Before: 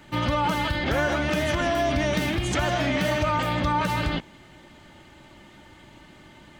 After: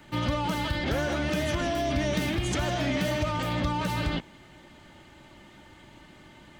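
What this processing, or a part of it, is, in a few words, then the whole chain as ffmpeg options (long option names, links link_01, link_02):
one-band saturation: -filter_complex "[0:a]acrossover=split=560|2900[link_01][link_02][link_03];[link_02]asoftclip=type=tanh:threshold=-30dB[link_04];[link_01][link_04][link_03]amix=inputs=3:normalize=0,volume=-2dB"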